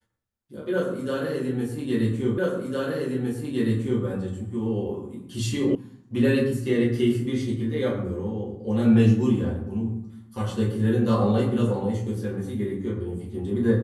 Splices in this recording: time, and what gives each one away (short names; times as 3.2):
2.38 repeat of the last 1.66 s
5.75 sound cut off